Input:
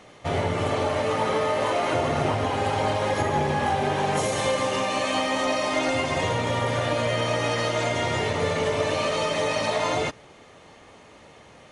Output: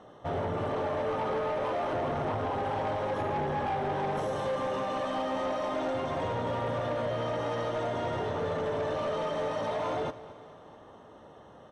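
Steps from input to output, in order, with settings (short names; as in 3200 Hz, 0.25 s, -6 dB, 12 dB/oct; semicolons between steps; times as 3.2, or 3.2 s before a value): tilt +1.5 dB/oct; in parallel at -2 dB: limiter -20 dBFS, peak gain reduction 7.5 dB; on the sum: running mean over 19 samples; soft clip -22.5 dBFS, distortion -13 dB; feedback echo 0.219 s, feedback 56%, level -17 dB; gain -4 dB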